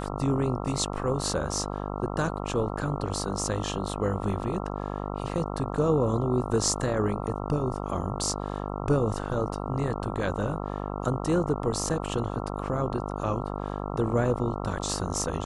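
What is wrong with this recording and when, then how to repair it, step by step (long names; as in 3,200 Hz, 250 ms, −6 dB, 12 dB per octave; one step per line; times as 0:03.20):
mains buzz 50 Hz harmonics 27 −33 dBFS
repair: hum removal 50 Hz, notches 27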